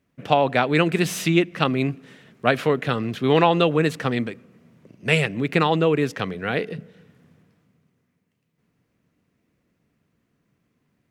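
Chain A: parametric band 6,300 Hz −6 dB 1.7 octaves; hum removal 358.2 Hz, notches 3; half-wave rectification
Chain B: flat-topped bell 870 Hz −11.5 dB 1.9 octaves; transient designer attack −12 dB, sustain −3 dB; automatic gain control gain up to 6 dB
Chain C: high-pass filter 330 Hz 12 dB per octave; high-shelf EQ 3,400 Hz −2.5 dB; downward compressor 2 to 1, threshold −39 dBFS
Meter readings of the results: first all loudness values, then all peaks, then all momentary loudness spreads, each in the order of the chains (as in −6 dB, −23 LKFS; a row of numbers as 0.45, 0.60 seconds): −26.0, −21.5, −35.0 LKFS; −3.0, −3.5, −15.5 dBFS; 11, 11, 9 LU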